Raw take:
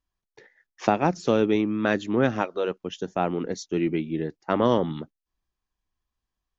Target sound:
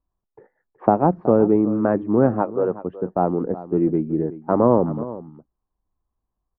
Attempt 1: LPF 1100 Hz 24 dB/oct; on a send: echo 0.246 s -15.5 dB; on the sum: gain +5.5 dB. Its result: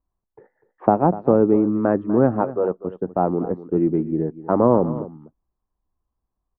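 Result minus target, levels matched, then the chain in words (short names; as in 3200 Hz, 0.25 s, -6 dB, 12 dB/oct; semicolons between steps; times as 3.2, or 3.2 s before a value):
echo 0.127 s early
LPF 1100 Hz 24 dB/oct; on a send: echo 0.373 s -15.5 dB; on the sum: gain +5.5 dB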